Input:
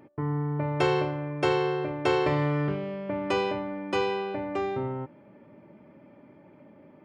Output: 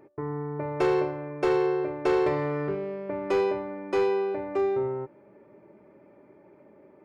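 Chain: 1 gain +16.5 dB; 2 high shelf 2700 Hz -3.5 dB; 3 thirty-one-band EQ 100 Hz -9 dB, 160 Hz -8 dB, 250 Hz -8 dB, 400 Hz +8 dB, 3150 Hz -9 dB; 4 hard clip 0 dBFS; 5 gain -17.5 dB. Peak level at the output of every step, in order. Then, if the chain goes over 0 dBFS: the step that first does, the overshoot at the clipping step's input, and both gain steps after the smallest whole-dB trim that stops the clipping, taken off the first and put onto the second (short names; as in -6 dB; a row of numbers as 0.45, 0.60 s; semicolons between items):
+5.0, +4.5, +7.0, 0.0, -17.5 dBFS; step 1, 7.0 dB; step 1 +9.5 dB, step 5 -10.5 dB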